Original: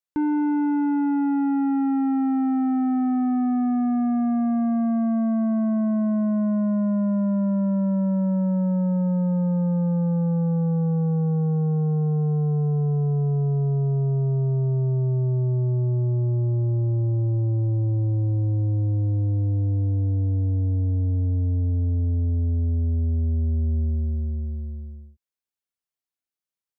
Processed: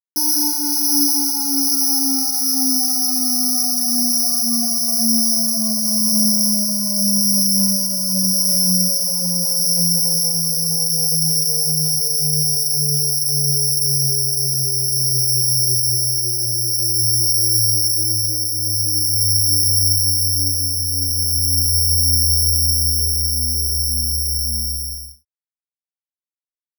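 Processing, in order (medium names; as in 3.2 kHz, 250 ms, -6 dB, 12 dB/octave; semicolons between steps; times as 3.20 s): 7.00–7.58 s: Bessel low-pass 1.1 kHz, order 2; in parallel at -2 dB: peak limiter -29.5 dBFS, peak gain reduction 9.5 dB; on the sum: crossover distortion -57.5 dBFS; early reflections 70 ms -17 dB, 80 ms -16 dB; careless resampling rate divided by 8×, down none, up zero stuff; three-phase chorus; trim -3.5 dB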